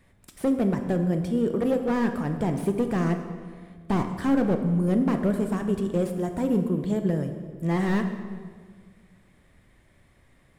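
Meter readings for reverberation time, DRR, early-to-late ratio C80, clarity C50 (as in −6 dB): 1.7 s, 6.5 dB, 9.0 dB, 8.0 dB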